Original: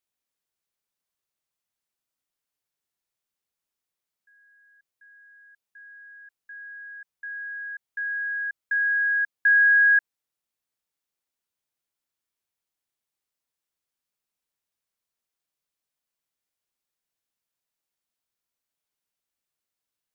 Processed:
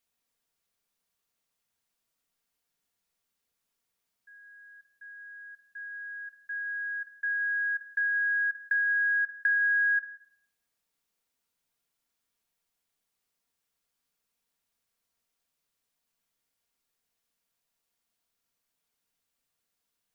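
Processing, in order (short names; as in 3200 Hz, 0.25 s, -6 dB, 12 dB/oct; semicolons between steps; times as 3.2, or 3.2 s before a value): compressor 5:1, threshold -33 dBFS, peak gain reduction 14.5 dB; shoebox room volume 2800 m³, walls furnished, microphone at 1.7 m; gain +3.5 dB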